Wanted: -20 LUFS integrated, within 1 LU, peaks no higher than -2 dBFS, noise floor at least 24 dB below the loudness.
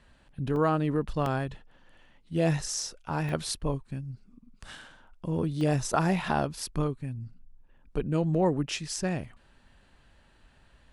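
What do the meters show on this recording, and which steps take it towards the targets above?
dropouts 4; longest dropout 1.7 ms; loudness -30.0 LUFS; peak -12.5 dBFS; loudness target -20.0 LUFS
-> interpolate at 0.56/1.26/3.29/5.61, 1.7 ms; gain +10 dB

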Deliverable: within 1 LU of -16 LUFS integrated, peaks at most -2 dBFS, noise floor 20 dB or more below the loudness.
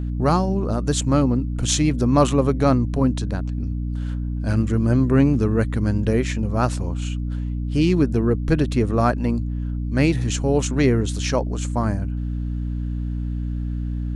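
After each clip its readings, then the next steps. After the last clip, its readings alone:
hum 60 Hz; harmonics up to 300 Hz; hum level -23 dBFS; loudness -21.5 LUFS; peak -4.5 dBFS; loudness target -16.0 LUFS
-> notches 60/120/180/240/300 Hz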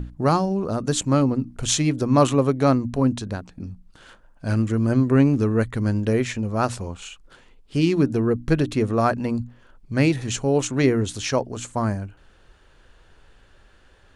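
hum none; loudness -22.0 LUFS; peak -5.0 dBFS; loudness target -16.0 LUFS
-> gain +6 dB; limiter -2 dBFS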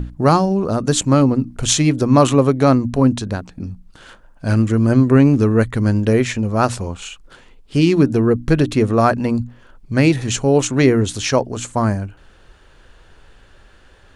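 loudness -16.5 LUFS; peak -2.0 dBFS; noise floor -48 dBFS

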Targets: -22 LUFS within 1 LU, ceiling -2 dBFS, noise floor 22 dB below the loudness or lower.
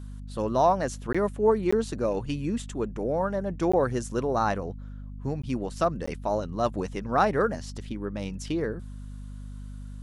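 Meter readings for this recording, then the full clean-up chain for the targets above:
dropouts 5; longest dropout 15 ms; hum 50 Hz; harmonics up to 250 Hz; hum level -37 dBFS; loudness -28.0 LUFS; peak -10.0 dBFS; loudness target -22.0 LUFS
-> interpolate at 1.13/1.71/3.72/5.42/6.06, 15 ms; de-hum 50 Hz, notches 5; gain +6 dB

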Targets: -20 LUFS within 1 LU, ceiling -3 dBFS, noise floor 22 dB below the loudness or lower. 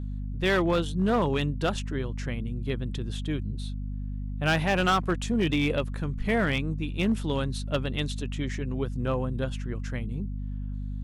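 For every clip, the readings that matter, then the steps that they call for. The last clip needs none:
clipped 0.9%; flat tops at -18.0 dBFS; hum 50 Hz; harmonics up to 250 Hz; hum level -30 dBFS; loudness -29.0 LUFS; peak -18.0 dBFS; loudness target -20.0 LUFS
-> clip repair -18 dBFS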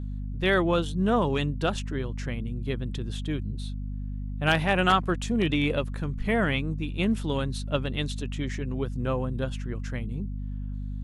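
clipped 0.0%; hum 50 Hz; harmonics up to 250 Hz; hum level -30 dBFS
-> de-hum 50 Hz, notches 5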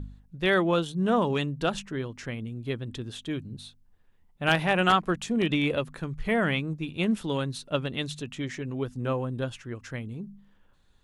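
hum none; loudness -28.5 LUFS; peak -8.0 dBFS; loudness target -20.0 LUFS
-> gain +8.5 dB; limiter -3 dBFS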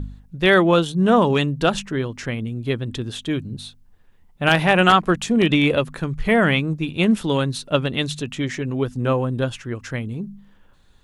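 loudness -20.0 LUFS; peak -3.0 dBFS; noise floor -53 dBFS

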